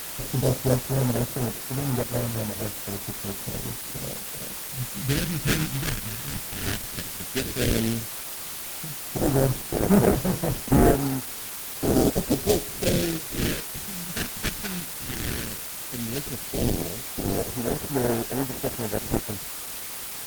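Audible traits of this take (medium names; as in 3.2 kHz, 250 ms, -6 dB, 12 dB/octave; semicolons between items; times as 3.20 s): aliases and images of a low sample rate 1.1 kHz, jitter 20%; phasing stages 2, 0.12 Hz, lowest notch 530–3800 Hz; a quantiser's noise floor 6-bit, dither triangular; Opus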